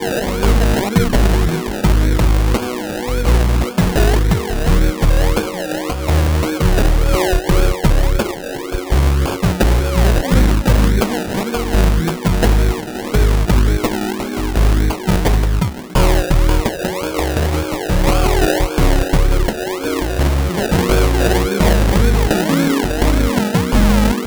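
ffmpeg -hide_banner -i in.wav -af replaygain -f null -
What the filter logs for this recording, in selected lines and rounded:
track_gain = -0.4 dB
track_peak = 0.545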